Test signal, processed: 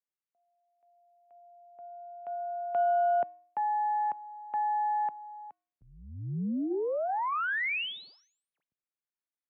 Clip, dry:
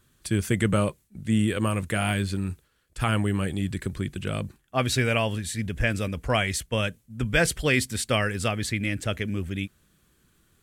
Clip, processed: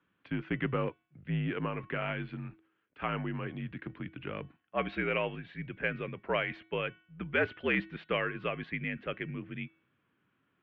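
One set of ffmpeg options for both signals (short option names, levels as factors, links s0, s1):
-af "bandreject=f=384.8:t=h:w=4,bandreject=f=769.6:t=h:w=4,bandreject=f=1154.4:t=h:w=4,bandreject=f=1539.2:t=h:w=4,bandreject=f=1924:t=h:w=4,bandreject=f=2308.8:t=h:w=4,bandreject=f=2693.6:t=h:w=4,bandreject=f=3078.4:t=h:w=4,bandreject=f=3463.2:t=h:w=4,bandreject=f=3848:t=h:w=4,bandreject=f=4232.8:t=h:w=4,aeval=exprs='0.398*(cos(1*acos(clip(val(0)/0.398,-1,1)))-cos(1*PI/2))+0.1*(cos(2*acos(clip(val(0)/0.398,-1,1)))-cos(2*PI/2))+0.0562*(cos(4*acos(clip(val(0)/0.398,-1,1)))-cos(4*PI/2))':c=same,highpass=f=210:t=q:w=0.5412,highpass=f=210:t=q:w=1.307,lowpass=f=2900:t=q:w=0.5176,lowpass=f=2900:t=q:w=0.7071,lowpass=f=2900:t=q:w=1.932,afreqshift=-60,volume=0.501"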